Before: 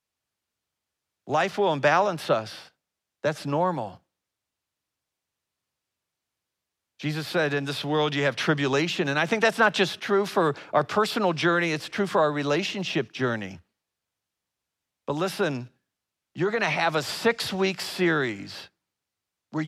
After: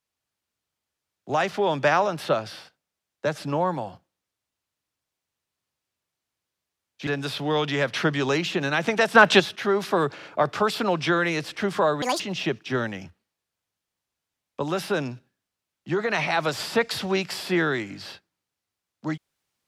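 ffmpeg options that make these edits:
ffmpeg -i in.wav -filter_complex "[0:a]asplit=8[link_01][link_02][link_03][link_04][link_05][link_06][link_07][link_08];[link_01]atrim=end=7.072[link_09];[link_02]atrim=start=7.508:end=9.592[link_10];[link_03]atrim=start=9.588:end=9.842,asetpts=PTS-STARTPTS,volume=6dB[link_11];[link_04]atrim=start=9.838:end=10.632[link_12];[link_05]atrim=start=10.588:end=10.632[link_13];[link_06]atrim=start=10.588:end=12.384[link_14];[link_07]atrim=start=12.38:end=12.69,asetpts=PTS-STARTPTS,asetrate=76734,aresample=44100[link_15];[link_08]atrim=start=12.686[link_16];[link_09][link_10]acrossfade=duration=0.004:curve1=hsin:curve2=hsin[link_17];[link_17][link_11]acrossfade=duration=0.004:curve1=hsin:curve2=hsin[link_18];[link_18][link_12]acrossfade=duration=0.004:curve1=hsin:curve2=hsin[link_19];[link_19][link_13]acrossfade=duration=0.004:curve1=hsin:curve2=hsin[link_20];[link_20][link_14]acrossfade=duration=0.004:curve1=hsin:curve2=hsin[link_21];[link_21][link_15]acrossfade=duration=0.004:curve1=hsin:curve2=hsin[link_22];[link_22][link_16]acrossfade=duration=0.004:curve1=hsin:curve2=hsin" out.wav

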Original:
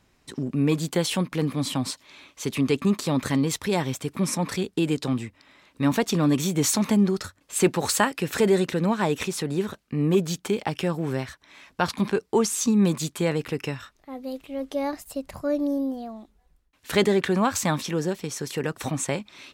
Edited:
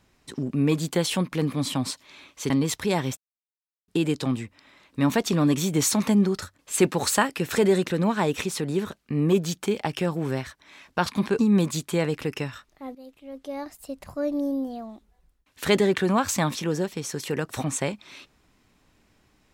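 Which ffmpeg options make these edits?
ffmpeg -i in.wav -filter_complex "[0:a]asplit=6[link_01][link_02][link_03][link_04][link_05][link_06];[link_01]atrim=end=2.502[link_07];[link_02]atrim=start=3.318:end=3.99,asetpts=PTS-STARTPTS,afade=type=out:start_time=0.668:duration=0.004:curve=hsin[link_08];[link_03]atrim=start=3.99:end=4.7,asetpts=PTS-STARTPTS,volume=0[link_09];[link_04]atrim=start=4.7:end=12.212,asetpts=PTS-STARTPTS,afade=type=in:duration=0.004:curve=hsin[link_10];[link_05]atrim=start=12.658:end=14.22,asetpts=PTS-STARTPTS,afade=type=out:start_time=1.558:duration=0.004:curve=hsin:silence=0.211349[link_11];[link_06]atrim=start=14.22,asetpts=PTS-STARTPTS,afade=type=in:duration=1.79:silence=0.211349[link_12];[link_08][link_09][link_10]concat=n=3:v=0:a=1[link_13];[link_07][link_13]acrossfade=duration=0.004:curve1=hsin:curve2=hsin[link_14];[link_11][link_12]concat=n=2:v=0:a=1[link_15];[link_14][link_15]acrossfade=duration=0.004:curve1=hsin:curve2=hsin" out.wav

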